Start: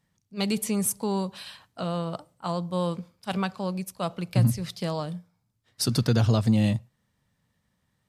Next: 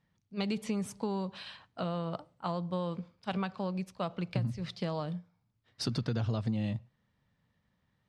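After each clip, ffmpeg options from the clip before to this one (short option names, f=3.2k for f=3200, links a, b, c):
-af "lowpass=4k,acompressor=threshold=-27dB:ratio=6,volume=-2dB"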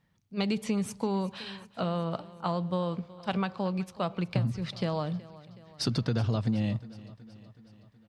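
-af "aecho=1:1:372|744|1116|1488|1860:0.112|0.0662|0.0391|0.023|0.0136,volume=4dB"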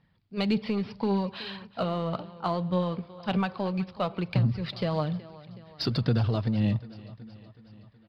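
-filter_complex "[0:a]aresample=11025,aresample=44100,asplit=2[a][b];[b]asoftclip=type=hard:threshold=-29dB,volume=-9dB[c];[a][c]amix=inputs=2:normalize=0,aphaser=in_gain=1:out_gain=1:delay=3.2:decay=0.31:speed=1.8:type=triangular"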